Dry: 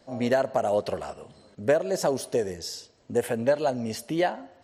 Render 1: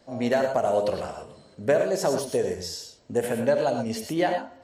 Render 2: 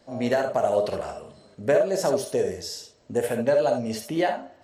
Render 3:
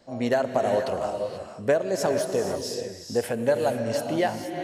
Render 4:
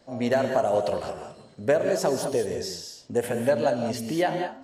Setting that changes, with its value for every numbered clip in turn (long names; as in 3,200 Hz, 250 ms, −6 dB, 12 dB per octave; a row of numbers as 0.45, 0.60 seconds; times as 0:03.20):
reverb whose tail is shaped and stops, gate: 140, 90, 510, 230 milliseconds